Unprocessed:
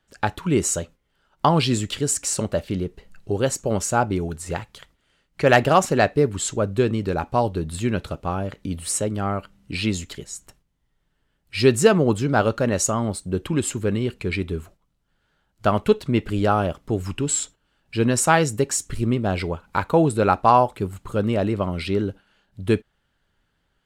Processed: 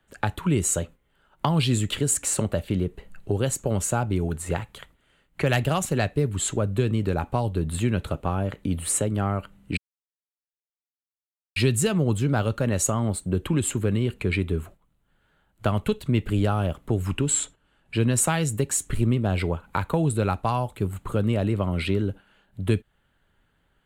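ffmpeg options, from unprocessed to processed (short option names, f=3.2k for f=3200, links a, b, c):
-filter_complex "[0:a]asettb=1/sr,asplit=3[a][b][c];[a]atrim=end=17.344[d];[b]atrim=start=17.34:end=18.13,asetpts=PTS-STARTPTS,afade=t=in:d=0.004:c=qsin,afade=t=out:st=0.786:d=0.004:c=qsin,lowpass=f=12k:w=0.5412,lowpass=f=12k:w=1.3066[e];[c]atrim=start=18.126[f];[d][e]acrossfade=d=0.004:c1=hsin:c2=qsin[g];[g][f]acrossfade=d=0.004:c1=qsin:c2=hsin,asplit=3[h][i][j];[h]atrim=end=9.77,asetpts=PTS-STARTPTS,afade=t=out:st=9.766:d=0.004:c=hsin[k];[i]atrim=start=9.77:end=11.56,asetpts=PTS-STARTPTS,volume=0[l];[j]atrim=start=11.56,asetpts=PTS-STARTPTS,afade=t=in:d=0.004:c=hsin[m];[k][l][m]concat=n=3:v=0:a=1,equalizer=f=5.3k:t=o:w=0.64:g=-12.5,acrossover=split=160|3000[n][o][p];[o]acompressor=threshold=-27dB:ratio=6[q];[n][q][p]amix=inputs=3:normalize=0,volume=3dB"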